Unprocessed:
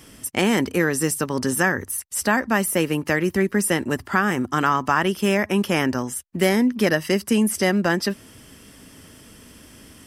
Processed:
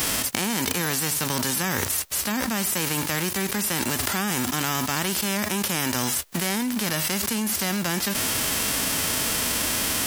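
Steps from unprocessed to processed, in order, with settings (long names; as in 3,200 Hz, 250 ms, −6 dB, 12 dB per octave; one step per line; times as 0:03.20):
spectral envelope flattened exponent 0.3
envelope flattener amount 100%
level −9.5 dB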